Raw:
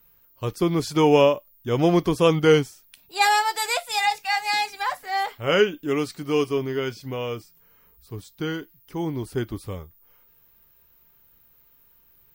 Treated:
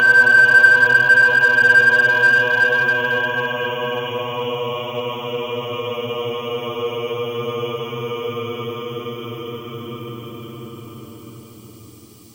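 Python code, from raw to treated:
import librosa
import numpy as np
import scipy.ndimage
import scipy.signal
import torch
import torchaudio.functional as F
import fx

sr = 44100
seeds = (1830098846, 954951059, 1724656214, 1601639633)

p1 = fx.spec_paint(x, sr, seeds[0], shape='rise', start_s=5.79, length_s=1.43, low_hz=700.0, high_hz=1600.0, level_db=-11.0)
p2 = fx.paulstretch(p1, sr, seeds[1], factor=50.0, window_s=0.1, from_s=7.17)
p3 = fx.graphic_eq_31(p2, sr, hz=(100, 1000, 1600, 3150, 5000, 12500), db=(-7, 8, -3, 6, -10, 4))
p4 = np.clip(p3, -10.0 ** (-18.5 / 20.0), 10.0 ** (-18.5 / 20.0))
y = p3 + (p4 * librosa.db_to_amplitude(-7.0))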